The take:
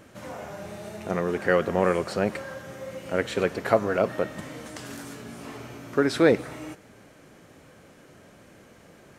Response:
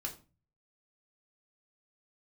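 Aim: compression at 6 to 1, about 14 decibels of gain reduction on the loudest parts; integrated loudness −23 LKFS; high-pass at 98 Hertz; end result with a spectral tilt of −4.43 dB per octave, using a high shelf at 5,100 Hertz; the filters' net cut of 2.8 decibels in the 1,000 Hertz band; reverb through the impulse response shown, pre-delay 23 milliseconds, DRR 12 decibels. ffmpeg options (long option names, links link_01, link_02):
-filter_complex "[0:a]highpass=98,equalizer=frequency=1000:width_type=o:gain=-4.5,highshelf=frequency=5100:gain=5,acompressor=threshold=-30dB:ratio=6,asplit=2[link_01][link_02];[1:a]atrim=start_sample=2205,adelay=23[link_03];[link_02][link_03]afir=irnorm=-1:irlink=0,volume=-11.5dB[link_04];[link_01][link_04]amix=inputs=2:normalize=0,volume=13.5dB"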